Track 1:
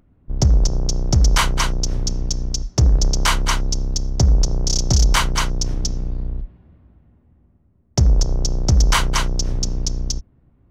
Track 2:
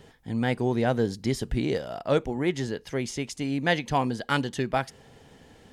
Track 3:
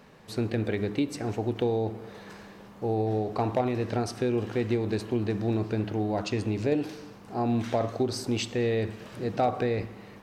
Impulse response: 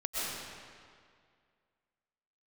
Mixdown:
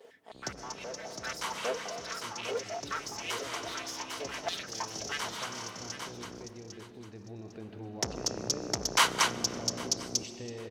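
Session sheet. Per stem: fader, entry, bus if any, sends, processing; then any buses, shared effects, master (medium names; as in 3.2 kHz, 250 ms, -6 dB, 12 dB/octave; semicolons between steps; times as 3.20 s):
-3.0 dB, 0.05 s, no bus, send -23 dB, echo send -20.5 dB, high-pass 330 Hz 12 dB/octave; auto duck -19 dB, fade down 0.85 s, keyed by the second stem
-7.0 dB, 0.00 s, bus A, send -21.5 dB, echo send -4 dB, comb filter that takes the minimum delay 4.5 ms; step-sequenced high-pass 9.5 Hz 500–5300 Hz
6.99 s -22.5 dB -> 7.71 s -14.5 dB, 1.85 s, bus A, send -9.5 dB, no echo send, none
bus A: 0.0 dB, saturation -32.5 dBFS, distortion -7 dB; compression, threshold -43 dBFS, peak gain reduction 8.5 dB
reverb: on, RT60 2.1 s, pre-delay 85 ms
echo: feedback delay 802 ms, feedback 25%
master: transformer saturation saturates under 3 kHz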